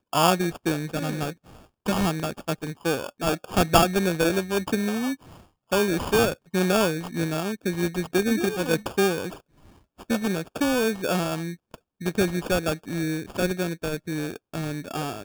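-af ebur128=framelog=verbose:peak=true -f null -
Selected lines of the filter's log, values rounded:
Integrated loudness:
  I:         -25.6 LUFS
  Threshold: -36.0 LUFS
Loudness range:
  LRA:         3.8 LU
  Threshold: -45.7 LUFS
  LRA low:   -28.0 LUFS
  LRA high:  -24.3 LUFS
True peak:
  Peak:       -3.0 dBFS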